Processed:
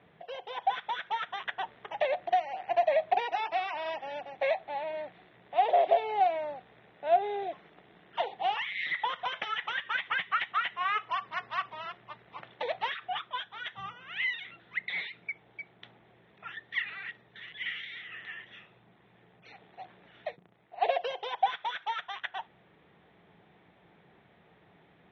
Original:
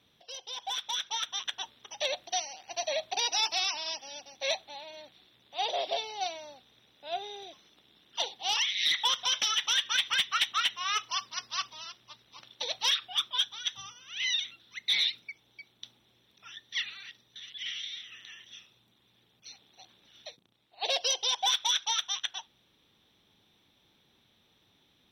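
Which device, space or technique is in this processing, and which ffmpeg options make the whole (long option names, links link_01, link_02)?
bass amplifier: -af "acompressor=threshold=-34dB:ratio=4,highpass=68,equalizer=frequency=100:width_type=q:width=4:gain=-4,equalizer=frequency=170:width_type=q:width=4:gain=6,equalizer=frequency=250:width_type=q:width=4:gain=-6,equalizer=frequency=430:width_type=q:width=4:gain=4,equalizer=frequency=700:width_type=q:width=4:gain=7,equalizer=frequency=1900:width_type=q:width=4:gain=4,lowpass=frequency=2200:width=0.5412,lowpass=frequency=2200:width=1.3066,volume=8.5dB"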